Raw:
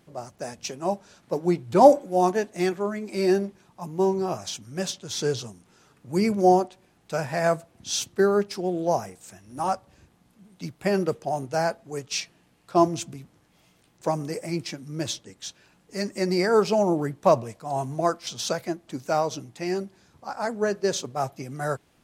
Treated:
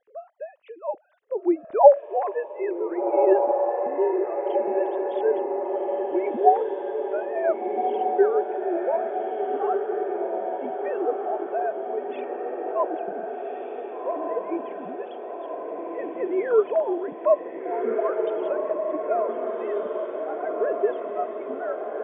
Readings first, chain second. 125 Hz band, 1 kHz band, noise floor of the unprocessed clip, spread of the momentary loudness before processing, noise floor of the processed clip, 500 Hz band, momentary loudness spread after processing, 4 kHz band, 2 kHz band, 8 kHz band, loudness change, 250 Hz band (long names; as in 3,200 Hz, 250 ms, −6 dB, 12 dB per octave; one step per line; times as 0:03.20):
below −25 dB, +1.0 dB, −63 dBFS, 15 LU, −43 dBFS, +2.5 dB, 13 LU, below −20 dB, −5.0 dB, below −40 dB, +0.5 dB, −4.0 dB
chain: three sine waves on the formant tracks
low-pass filter 1,000 Hz 6 dB per octave
on a send: feedback delay with all-pass diffusion 1,555 ms, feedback 65%, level −3.5 dB